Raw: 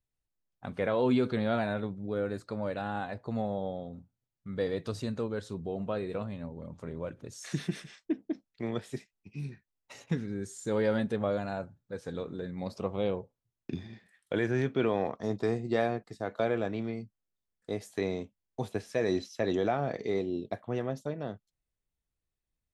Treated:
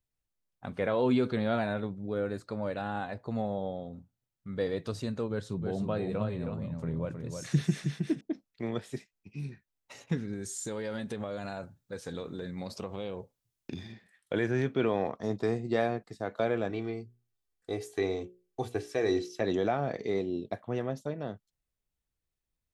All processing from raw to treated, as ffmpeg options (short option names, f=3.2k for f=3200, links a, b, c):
-filter_complex "[0:a]asettb=1/sr,asplit=3[a][b][c];[a]atrim=end=5.304[d];[b]atrim=start=5.3:end=8.21,asetpts=PTS-STARTPTS,afade=t=in:d=0.004:c=qsin,afade=t=out:st=2.906:d=0.004:c=qsin,equalizer=f=140:w=1.9:g=9.5,aecho=1:1:317:0.531,atrim=end_sample=128331[e];[c]atrim=start=8.206[f];[d][e]acrossfade=d=0.004:c1=hsin:c2=qsin[g];[g][f]acrossfade=d=0.004:c1=qsin:c2=hsin,asettb=1/sr,asplit=3[h][i][j];[h]atrim=end=10.334[k];[i]atrim=start=10.33:end=13.93,asetpts=PTS-STARTPTS,afade=t=in:d=0.004:c=qsin,afade=t=out:st=3.596:d=0.004:c=qsin,highshelf=f=2.5k:g=8.5,acompressor=threshold=-32dB:ratio=6:attack=3.2:release=140:knee=1:detection=peak[l];[j]atrim=start=13.926[m];[k][l]acrossfade=d=0.004:c1=hsin:c2=qsin[n];[n][m]acrossfade=d=0.004:c1=qsin:c2=hsin,asettb=1/sr,asplit=3[o][p][q];[o]atrim=end=16.704[r];[p]atrim=start=16.7:end=19.41,asetpts=PTS-STARTPTS,afade=t=in:d=0.004:c=qsin,afade=t=out:st=2.706:d=0.004:c=qsin,bandreject=f=60:t=h:w=6,bandreject=f=120:t=h:w=6,bandreject=f=180:t=h:w=6,bandreject=f=240:t=h:w=6,bandreject=f=300:t=h:w=6,bandreject=f=360:t=h:w=6,bandreject=f=420:t=h:w=6,bandreject=f=480:t=h:w=6,bandreject=f=540:t=h:w=6,bandreject=f=600:t=h:w=6,aecho=1:1:2.6:0.56,atrim=end_sample=119511[s];[q]atrim=start=19.406[t];[r][s]acrossfade=d=0.004:c1=hsin:c2=qsin[u];[u][t]acrossfade=d=0.004:c1=qsin:c2=hsin"